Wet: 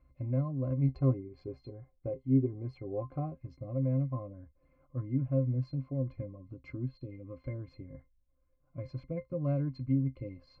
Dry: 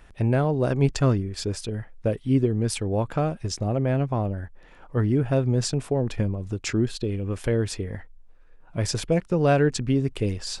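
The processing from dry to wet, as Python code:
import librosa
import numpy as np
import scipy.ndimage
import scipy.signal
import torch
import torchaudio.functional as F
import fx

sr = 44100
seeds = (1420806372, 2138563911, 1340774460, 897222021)

y = scipy.signal.sosfilt(scipy.signal.butter(2, 3300.0, 'lowpass', fs=sr, output='sos'), x)
y = fx.octave_resonator(y, sr, note='C', decay_s=0.11)
y = fx.small_body(y, sr, hz=(400.0, 750.0), ring_ms=95, db=17, at=(0.88, 3.35))
y = y * 10.0 ** (-5.0 / 20.0)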